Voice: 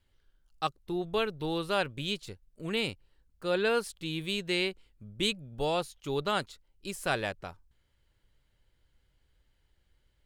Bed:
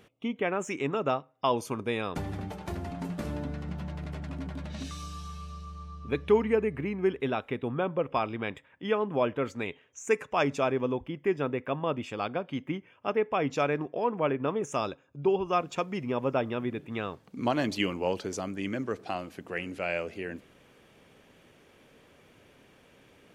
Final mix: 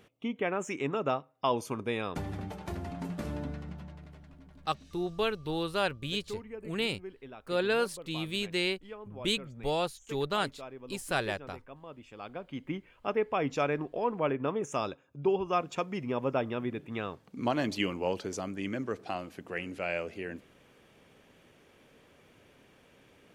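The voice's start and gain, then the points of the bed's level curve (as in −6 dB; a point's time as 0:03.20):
4.05 s, −0.5 dB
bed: 0:03.49 −2 dB
0:04.36 −17.5 dB
0:11.88 −17.5 dB
0:12.76 −2 dB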